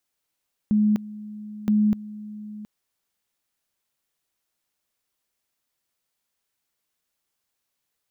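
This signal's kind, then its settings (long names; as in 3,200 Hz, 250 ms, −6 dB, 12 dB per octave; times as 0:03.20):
tone at two levels in turn 211 Hz −16 dBFS, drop 18 dB, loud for 0.25 s, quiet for 0.72 s, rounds 2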